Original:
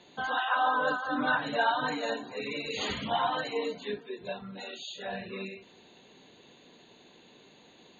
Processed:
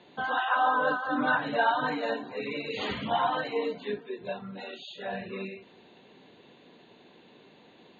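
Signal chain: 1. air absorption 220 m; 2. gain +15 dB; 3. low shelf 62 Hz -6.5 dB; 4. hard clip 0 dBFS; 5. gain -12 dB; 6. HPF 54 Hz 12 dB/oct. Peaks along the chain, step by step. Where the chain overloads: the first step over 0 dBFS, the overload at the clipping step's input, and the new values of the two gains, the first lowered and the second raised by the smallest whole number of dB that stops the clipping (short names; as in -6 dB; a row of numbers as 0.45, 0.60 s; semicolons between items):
-16.5, -1.5, -1.5, -1.5, -13.5, -13.5 dBFS; no overload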